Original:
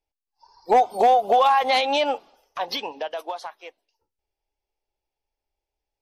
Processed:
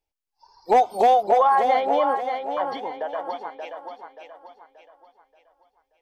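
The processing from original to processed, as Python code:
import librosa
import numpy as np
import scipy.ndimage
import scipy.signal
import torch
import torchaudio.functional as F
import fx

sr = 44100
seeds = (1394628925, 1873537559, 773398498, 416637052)

y = fx.savgol(x, sr, points=41, at=(1.22, 3.59), fade=0.02)
y = fx.echo_thinned(y, sr, ms=580, feedback_pct=40, hz=170.0, wet_db=-6.5)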